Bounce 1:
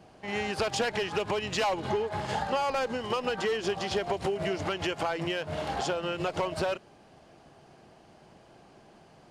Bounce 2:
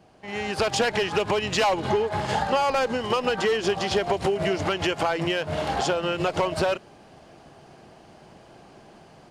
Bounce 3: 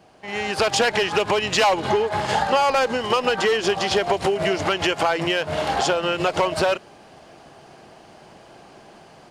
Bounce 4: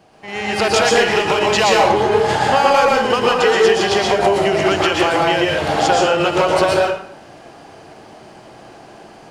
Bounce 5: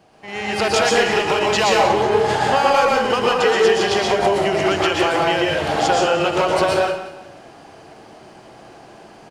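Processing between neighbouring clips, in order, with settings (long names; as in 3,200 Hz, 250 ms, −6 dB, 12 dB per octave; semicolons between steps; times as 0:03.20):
automatic gain control gain up to 7.5 dB; level −1.5 dB
low-shelf EQ 310 Hz −6.5 dB; level +5 dB
dense smooth reverb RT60 0.66 s, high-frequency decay 0.65×, pre-delay 105 ms, DRR −2.5 dB; level +1.5 dB
repeating echo 181 ms, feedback 35%, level −14 dB; level −2.5 dB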